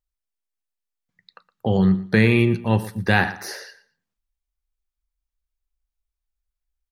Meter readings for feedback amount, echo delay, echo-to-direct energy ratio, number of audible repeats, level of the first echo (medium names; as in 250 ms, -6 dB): 21%, 116 ms, -17.0 dB, 2, -17.0 dB